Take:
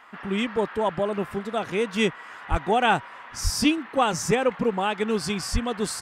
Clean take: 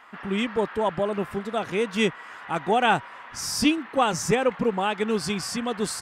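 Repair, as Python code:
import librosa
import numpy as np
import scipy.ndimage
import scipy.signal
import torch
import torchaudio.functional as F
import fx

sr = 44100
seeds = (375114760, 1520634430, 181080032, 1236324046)

y = fx.highpass(x, sr, hz=140.0, slope=24, at=(2.5, 2.62), fade=0.02)
y = fx.highpass(y, sr, hz=140.0, slope=24, at=(3.43, 3.55), fade=0.02)
y = fx.highpass(y, sr, hz=140.0, slope=24, at=(5.52, 5.64), fade=0.02)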